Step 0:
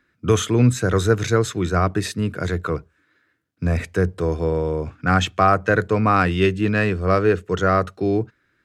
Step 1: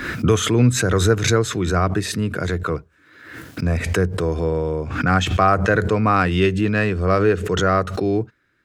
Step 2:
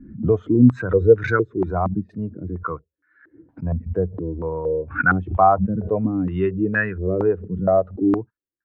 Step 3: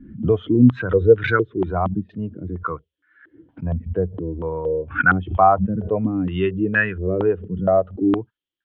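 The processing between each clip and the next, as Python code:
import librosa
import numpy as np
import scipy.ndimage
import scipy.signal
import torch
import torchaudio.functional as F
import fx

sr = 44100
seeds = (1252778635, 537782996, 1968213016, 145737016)

y1 = fx.pre_swell(x, sr, db_per_s=58.0)
y2 = fx.bin_expand(y1, sr, power=1.5)
y2 = fx.filter_held_lowpass(y2, sr, hz=4.3, low_hz=220.0, high_hz=1500.0)
y2 = y2 * 10.0 ** (-2.5 / 20.0)
y3 = fx.lowpass_res(y2, sr, hz=3200.0, q=8.2)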